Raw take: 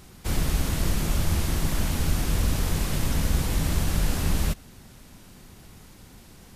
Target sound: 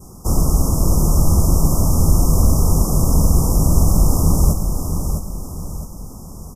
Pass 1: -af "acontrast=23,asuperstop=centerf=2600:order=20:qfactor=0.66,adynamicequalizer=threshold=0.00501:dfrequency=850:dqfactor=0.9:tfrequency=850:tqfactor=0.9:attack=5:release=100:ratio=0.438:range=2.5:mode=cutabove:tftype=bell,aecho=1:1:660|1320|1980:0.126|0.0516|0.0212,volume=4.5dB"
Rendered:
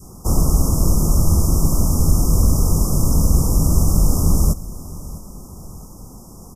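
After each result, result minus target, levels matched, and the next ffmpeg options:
echo-to-direct -11.5 dB; 1000 Hz band -3.0 dB
-af "acontrast=23,asuperstop=centerf=2600:order=20:qfactor=0.66,adynamicequalizer=threshold=0.00501:dfrequency=850:dqfactor=0.9:tfrequency=850:tqfactor=0.9:attack=5:release=100:ratio=0.438:range=2.5:mode=cutabove:tftype=bell,aecho=1:1:660|1320|1980|2640|3300:0.473|0.194|0.0795|0.0326|0.0134,volume=4.5dB"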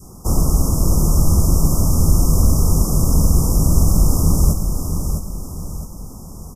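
1000 Hz band -2.5 dB
-af "acontrast=23,asuperstop=centerf=2600:order=20:qfactor=0.66,adynamicequalizer=threshold=0.00501:dfrequency=2200:dqfactor=0.9:tfrequency=2200:tqfactor=0.9:attack=5:release=100:ratio=0.438:range=2.5:mode=cutabove:tftype=bell,aecho=1:1:660|1320|1980|2640|3300:0.473|0.194|0.0795|0.0326|0.0134,volume=4.5dB"

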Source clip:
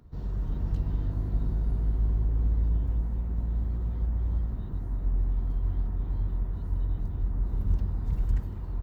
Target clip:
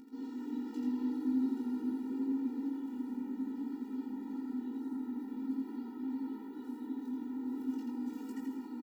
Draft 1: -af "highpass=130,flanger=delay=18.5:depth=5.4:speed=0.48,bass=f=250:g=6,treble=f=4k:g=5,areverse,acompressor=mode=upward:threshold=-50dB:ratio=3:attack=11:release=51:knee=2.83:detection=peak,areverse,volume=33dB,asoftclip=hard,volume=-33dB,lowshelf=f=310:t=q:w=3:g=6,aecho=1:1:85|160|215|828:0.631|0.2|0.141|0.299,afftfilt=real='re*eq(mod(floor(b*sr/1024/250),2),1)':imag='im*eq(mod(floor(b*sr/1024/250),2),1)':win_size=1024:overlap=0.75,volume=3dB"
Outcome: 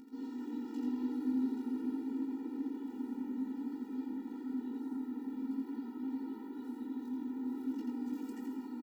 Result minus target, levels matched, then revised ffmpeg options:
overloaded stage: distortion +31 dB
-af "highpass=130,flanger=delay=18.5:depth=5.4:speed=0.48,bass=f=250:g=6,treble=f=4k:g=5,areverse,acompressor=mode=upward:threshold=-50dB:ratio=3:attack=11:release=51:knee=2.83:detection=peak,areverse,volume=24dB,asoftclip=hard,volume=-24dB,lowshelf=f=310:t=q:w=3:g=6,aecho=1:1:85|160|215|828:0.631|0.2|0.141|0.299,afftfilt=real='re*eq(mod(floor(b*sr/1024/250),2),1)':imag='im*eq(mod(floor(b*sr/1024/250),2),1)':win_size=1024:overlap=0.75,volume=3dB"

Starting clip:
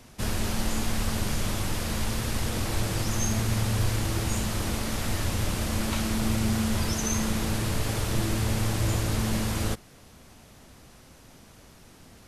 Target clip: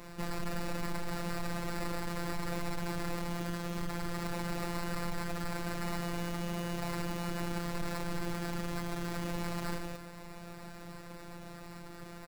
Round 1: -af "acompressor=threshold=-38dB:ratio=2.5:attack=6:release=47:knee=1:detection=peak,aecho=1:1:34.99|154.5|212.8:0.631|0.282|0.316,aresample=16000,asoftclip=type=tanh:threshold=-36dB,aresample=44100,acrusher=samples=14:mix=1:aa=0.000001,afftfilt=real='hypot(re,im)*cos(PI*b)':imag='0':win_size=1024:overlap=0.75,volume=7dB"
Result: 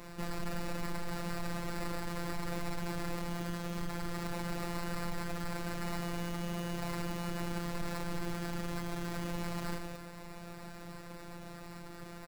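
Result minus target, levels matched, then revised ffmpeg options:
compressor: peak gain reduction +3.5 dB
-af "acompressor=threshold=-32dB:ratio=2.5:attack=6:release=47:knee=1:detection=peak,aecho=1:1:34.99|154.5|212.8:0.631|0.282|0.316,aresample=16000,asoftclip=type=tanh:threshold=-36dB,aresample=44100,acrusher=samples=14:mix=1:aa=0.000001,afftfilt=real='hypot(re,im)*cos(PI*b)':imag='0':win_size=1024:overlap=0.75,volume=7dB"

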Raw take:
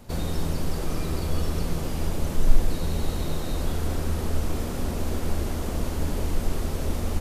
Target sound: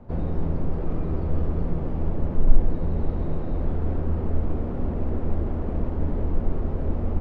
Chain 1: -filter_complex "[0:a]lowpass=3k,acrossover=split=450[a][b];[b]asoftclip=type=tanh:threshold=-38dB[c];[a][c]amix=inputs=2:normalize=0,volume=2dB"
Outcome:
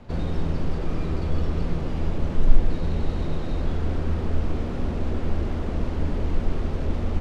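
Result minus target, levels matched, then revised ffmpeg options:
4000 Hz band +15.5 dB
-filter_complex "[0:a]lowpass=1k,acrossover=split=450[a][b];[b]asoftclip=type=tanh:threshold=-38dB[c];[a][c]amix=inputs=2:normalize=0,volume=2dB"

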